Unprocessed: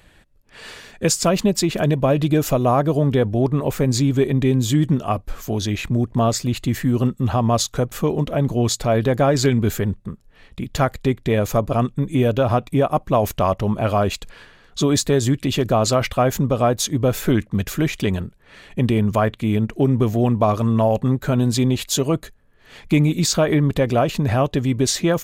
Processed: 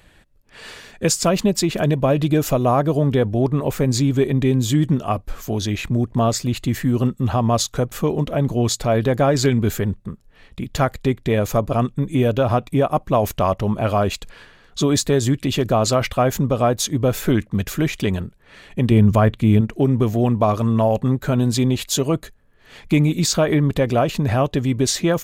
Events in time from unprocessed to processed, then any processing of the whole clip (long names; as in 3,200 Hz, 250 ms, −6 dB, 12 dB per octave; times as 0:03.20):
0:18.91–0:19.61: low-shelf EQ 230 Hz +8.5 dB